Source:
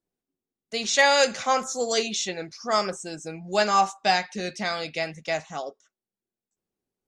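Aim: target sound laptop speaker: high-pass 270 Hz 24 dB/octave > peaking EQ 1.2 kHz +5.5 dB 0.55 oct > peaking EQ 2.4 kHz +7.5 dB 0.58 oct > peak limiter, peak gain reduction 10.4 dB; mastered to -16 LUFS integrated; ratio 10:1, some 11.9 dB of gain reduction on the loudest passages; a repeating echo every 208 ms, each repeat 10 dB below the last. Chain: compression 10:1, threshold -27 dBFS; high-pass 270 Hz 24 dB/octave; peaking EQ 1.2 kHz +5.5 dB 0.55 oct; peaking EQ 2.4 kHz +7.5 dB 0.58 oct; feedback delay 208 ms, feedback 32%, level -10 dB; trim +17.5 dB; peak limiter -6 dBFS

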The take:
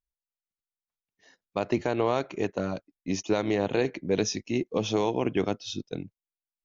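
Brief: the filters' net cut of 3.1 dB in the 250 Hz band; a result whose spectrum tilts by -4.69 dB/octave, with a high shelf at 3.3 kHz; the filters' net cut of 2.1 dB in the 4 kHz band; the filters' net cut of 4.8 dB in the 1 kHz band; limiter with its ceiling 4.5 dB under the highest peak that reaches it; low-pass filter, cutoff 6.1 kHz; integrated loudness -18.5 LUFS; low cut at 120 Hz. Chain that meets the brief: high-pass 120 Hz; low-pass 6.1 kHz; peaking EQ 250 Hz -3.5 dB; peaking EQ 1 kHz -6.5 dB; treble shelf 3.3 kHz +3.5 dB; peaking EQ 4 kHz -4 dB; trim +15 dB; peak limiter -5 dBFS

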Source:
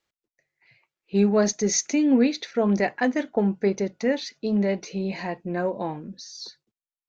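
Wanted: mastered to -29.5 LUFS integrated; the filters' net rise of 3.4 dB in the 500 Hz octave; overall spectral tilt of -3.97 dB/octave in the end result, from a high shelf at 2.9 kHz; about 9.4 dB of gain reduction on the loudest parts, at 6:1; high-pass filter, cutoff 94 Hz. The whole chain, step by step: high-pass 94 Hz; peaking EQ 500 Hz +4 dB; treble shelf 2.9 kHz +5.5 dB; compression 6:1, threshold -24 dBFS

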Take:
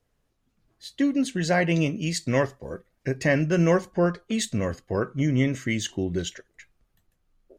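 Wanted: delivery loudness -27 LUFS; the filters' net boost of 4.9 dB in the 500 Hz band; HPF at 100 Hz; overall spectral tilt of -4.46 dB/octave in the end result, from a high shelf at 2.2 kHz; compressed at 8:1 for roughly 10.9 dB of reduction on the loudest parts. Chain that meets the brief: high-pass 100 Hz; peaking EQ 500 Hz +5.5 dB; treble shelf 2.2 kHz +5.5 dB; compression 8:1, threshold -24 dBFS; trim +3 dB

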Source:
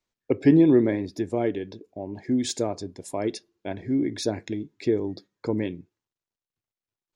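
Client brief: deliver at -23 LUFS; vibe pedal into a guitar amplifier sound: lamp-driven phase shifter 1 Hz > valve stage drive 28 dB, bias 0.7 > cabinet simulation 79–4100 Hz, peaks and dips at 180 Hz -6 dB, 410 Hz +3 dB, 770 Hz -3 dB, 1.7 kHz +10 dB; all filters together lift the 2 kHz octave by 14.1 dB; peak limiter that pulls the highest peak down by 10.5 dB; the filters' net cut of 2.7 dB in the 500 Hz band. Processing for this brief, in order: peaking EQ 500 Hz -6.5 dB; peaking EQ 2 kHz +9 dB; peak limiter -17.5 dBFS; lamp-driven phase shifter 1 Hz; valve stage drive 28 dB, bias 0.7; cabinet simulation 79–4100 Hz, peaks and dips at 180 Hz -6 dB, 410 Hz +3 dB, 770 Hz -3 dB, 1.7 kHz +10 dB; trim +14.5 dB

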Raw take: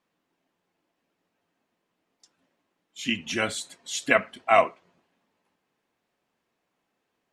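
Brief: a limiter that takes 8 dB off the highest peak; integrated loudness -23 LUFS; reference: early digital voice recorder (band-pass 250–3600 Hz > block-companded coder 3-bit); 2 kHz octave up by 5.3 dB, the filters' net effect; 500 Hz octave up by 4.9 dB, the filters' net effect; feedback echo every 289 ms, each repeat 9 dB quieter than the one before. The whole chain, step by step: peaking EQ 500 Hz +7 dB; peaking EQ 2 kHz +6.5 dB; peak limiter -7 dBFS; band-pass 250–3600 Hz; feedback delay 289 ms, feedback 35%, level -9 dB; block-companded coder 3-bit; trim +0.5 dB

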